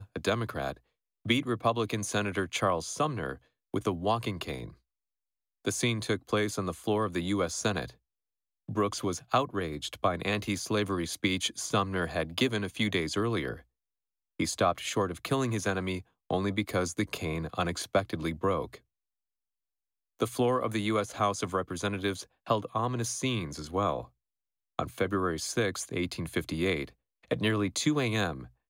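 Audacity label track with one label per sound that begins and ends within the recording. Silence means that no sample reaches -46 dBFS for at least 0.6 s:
5.650000	7.910000	sound
8.690000	13.600000	sound
14.400000	18.770000	sound
20.200000	24.060000	sound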